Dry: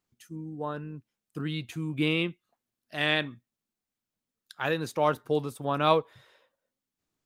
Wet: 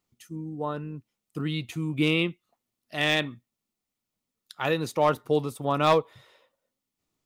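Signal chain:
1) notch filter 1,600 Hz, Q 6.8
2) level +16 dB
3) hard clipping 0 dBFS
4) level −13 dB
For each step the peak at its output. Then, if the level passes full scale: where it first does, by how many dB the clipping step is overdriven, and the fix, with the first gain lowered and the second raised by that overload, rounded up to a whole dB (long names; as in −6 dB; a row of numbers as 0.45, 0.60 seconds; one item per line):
−8.0, +8.0, 0.0, −13.0 dBFS
step 2, 8.0 dB
step 2 +8 dB, step 4 −5 dB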